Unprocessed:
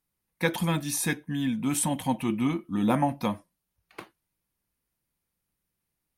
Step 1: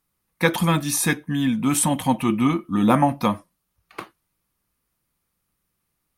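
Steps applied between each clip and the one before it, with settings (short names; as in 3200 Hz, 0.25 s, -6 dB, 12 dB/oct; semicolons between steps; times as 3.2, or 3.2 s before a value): bell 1200 Hz +7 dB 0.28 oct; gain +6.5 dB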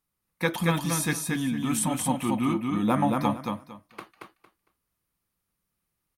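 feedback echo 0.228 s, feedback 21%, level -3.5 dB; gain -7 dB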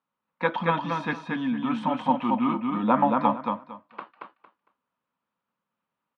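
speaker cabinet 220–3200 Hz, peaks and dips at 240 Hz +6 dB, 350 Hz -6 dB, 560 Hz +5 dB, 960 Hz +9 dB, 1400 Hz +4 dB, 2100 Hz -4 dB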